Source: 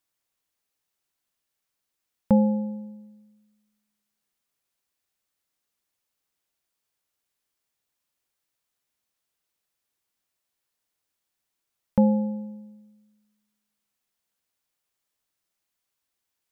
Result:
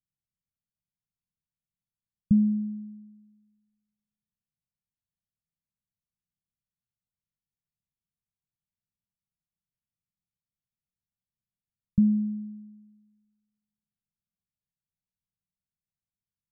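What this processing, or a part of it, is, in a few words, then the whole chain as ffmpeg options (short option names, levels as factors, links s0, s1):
the neighbour's flat through the wall: -af "lowpass=f=170:w=0.5412,lowpass=f=170:w=1.3066,equalizer=f=190:t=o:w=1:g=7.5"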